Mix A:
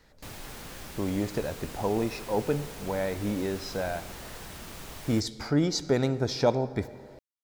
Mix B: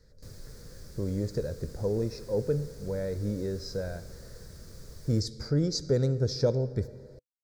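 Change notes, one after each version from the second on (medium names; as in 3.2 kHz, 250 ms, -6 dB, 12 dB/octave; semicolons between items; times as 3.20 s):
speech +4.0 dB; master: add FFT filter 130 Hz 0 dB, 290 Hz -11 dB, 500 Hz -2 dB, 770 Hz -22 dB, 1.6 kHz -12 dB, 2.9 kHz -25 dB, 4.7 kHz -4 dB, 7.2 kHz -8 dB, 13 kHz -12 dB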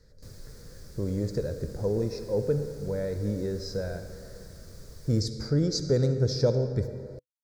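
speech: send +8.5 dB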